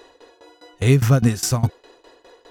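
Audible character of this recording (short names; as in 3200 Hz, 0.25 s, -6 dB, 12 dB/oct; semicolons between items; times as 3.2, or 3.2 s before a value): tremolo saw down 4.9 Hz, depth 90%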